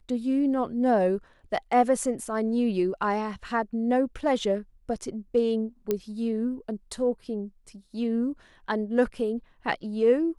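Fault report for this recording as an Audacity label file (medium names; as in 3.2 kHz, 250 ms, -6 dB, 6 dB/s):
5.910000	5.910000	pop -13 dBFS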